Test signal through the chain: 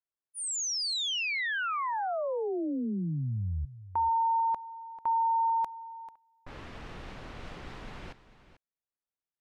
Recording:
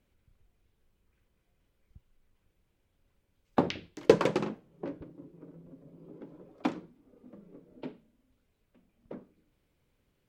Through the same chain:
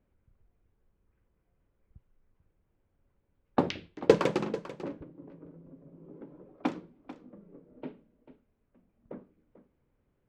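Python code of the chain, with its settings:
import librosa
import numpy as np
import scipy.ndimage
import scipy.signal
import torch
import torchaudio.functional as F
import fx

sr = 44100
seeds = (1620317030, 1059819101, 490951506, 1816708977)

p1 = fx.env_lowpass(x, sr, base_hz=1500.0, full_db=-27.0)
y = p1 + fx.echo_single(p1, sr, ms=442, db=-15.0, dry=0)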